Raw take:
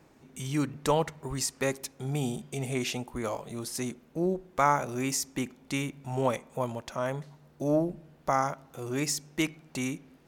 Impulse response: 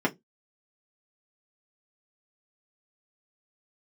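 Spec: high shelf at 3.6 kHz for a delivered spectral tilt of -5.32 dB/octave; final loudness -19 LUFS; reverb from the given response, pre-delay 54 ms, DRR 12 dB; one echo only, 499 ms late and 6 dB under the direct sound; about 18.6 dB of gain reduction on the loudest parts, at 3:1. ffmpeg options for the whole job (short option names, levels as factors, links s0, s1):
-filter_complex "[0:a]highshelf=f=3600:g=-8,acompressor=threshold=0.00447:ratio=3,aecho=1:1:499:0.501,asplit=2[s0][s1];[1:a]atrim=start_sample=2205,adelay=54[s2];[s1][s2]afir=irnorm=-1:irlink=0,volume=0.0668[s3];[s0][s3]amix=inputs=2:normalize=0,volume=21.1"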